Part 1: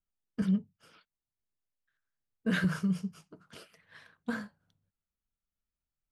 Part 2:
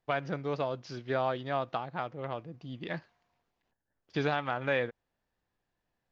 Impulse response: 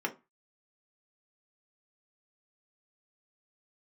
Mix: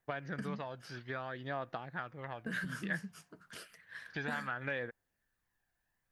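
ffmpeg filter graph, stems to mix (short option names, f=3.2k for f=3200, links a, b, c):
-filter_complex "[0:a]highshelf=f=4.5k:g=10.5,acompressor=threshold=-36dB:ratio=10,volume=-3.5dB[a];[1:a]acompressor=threshold=-33dB:ratio=3,aphaser=in_gain=1:out_gain=1:delay=1.4:decay=0.38:speed=0.61:type=triangular,volume=-6dB[b];[a][b]amix=inputs=2:normalize=0,equalizer=f=1.7k:w=2.5:g=10.5"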